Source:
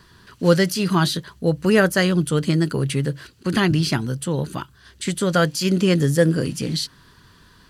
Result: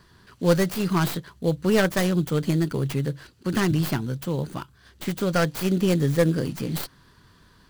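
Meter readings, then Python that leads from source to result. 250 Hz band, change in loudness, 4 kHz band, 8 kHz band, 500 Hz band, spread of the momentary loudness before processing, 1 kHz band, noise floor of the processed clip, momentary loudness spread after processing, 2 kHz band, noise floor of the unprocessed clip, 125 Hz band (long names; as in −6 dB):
−3.5 dB, −4.0 dB, −8.0 dB, −6.0 dB, −4.0 dB, 10 LU, −4.0 dB, −57 dBFS, 11 LU, −6.0 dB, −53 dBFS, −3.5 dB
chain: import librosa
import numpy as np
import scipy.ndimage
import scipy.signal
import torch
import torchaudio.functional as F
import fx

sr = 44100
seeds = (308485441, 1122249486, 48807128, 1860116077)

p1 = fx.tracing_dist(x, sr, depth_ms=0.28)
p2 = fx.sample_hold(p1, sr, seeds[0], rate_hz=3800.0, jitter_pct=20)
p3 = p1 + (p2 * 10.0 ** (-9.0 / 20.0))
y = p3 * 10.0 ** (-6.0 / 20.0)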